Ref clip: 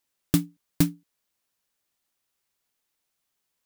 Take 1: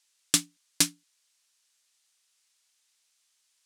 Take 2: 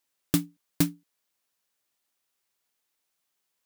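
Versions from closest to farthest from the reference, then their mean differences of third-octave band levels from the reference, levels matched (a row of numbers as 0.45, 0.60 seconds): 2, 1; 1.5, 7.0 decibels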